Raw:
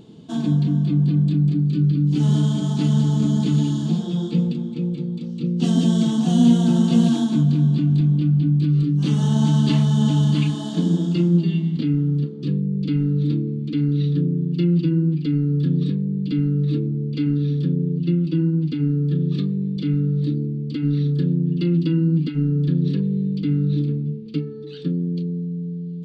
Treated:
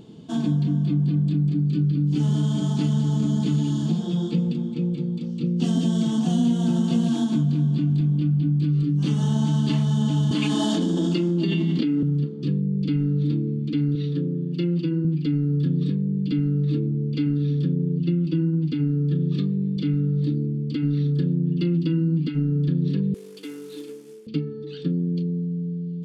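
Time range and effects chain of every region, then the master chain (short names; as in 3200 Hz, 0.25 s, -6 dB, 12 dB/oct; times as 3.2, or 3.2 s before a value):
10.31–12.03 HPF 210 Hz 24 dB/oct + fast leveller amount 100%
13.95–15.05 HPF 240 Hz 6 dB/oct + bell 540 Hz +3.5 dB 0.4 oct
23.14–24.27 CVSD 64 kbps + HPF 410 Hz 24 dB/oct
whole clip: notch 3900 Hz, Q 16; compressor 3:1, threshold -19 dBFS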